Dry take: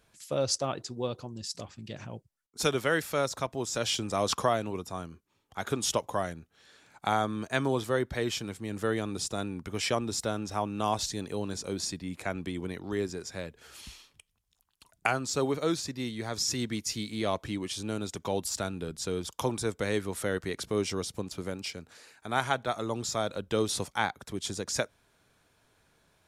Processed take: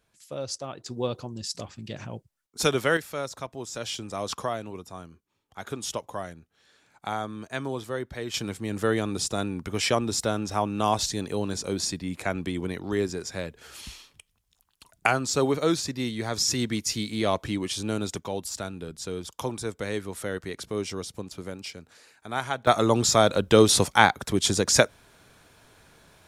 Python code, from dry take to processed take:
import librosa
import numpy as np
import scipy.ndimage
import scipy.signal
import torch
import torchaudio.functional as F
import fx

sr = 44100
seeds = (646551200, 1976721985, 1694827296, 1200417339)

y = fx.gain(x, sr, db=fx.steps((0.0, -5.0), (0.86, 4.0), (2.97, -3.5), (8.34, 5.0), (18.2, -1.0), (22.67, 11.5)))